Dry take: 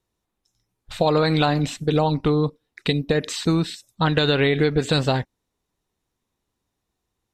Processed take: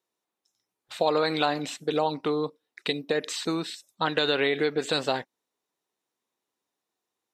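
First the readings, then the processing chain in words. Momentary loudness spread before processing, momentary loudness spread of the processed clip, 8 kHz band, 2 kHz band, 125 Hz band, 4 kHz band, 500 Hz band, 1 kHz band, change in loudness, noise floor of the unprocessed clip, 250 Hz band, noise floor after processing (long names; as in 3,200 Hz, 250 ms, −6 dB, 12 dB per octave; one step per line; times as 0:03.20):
8 LU, 8 LU, −3.5 dB, −3.5 dB, −18.0 dB, −3.5 dB, −4.5 dB, −3.5 dB, −6.0 dB, −80 dBFS, −9.0 dB, below −85 dBFS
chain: high-pass filter 340 Hz 12 dB per octave
level −3.5 dB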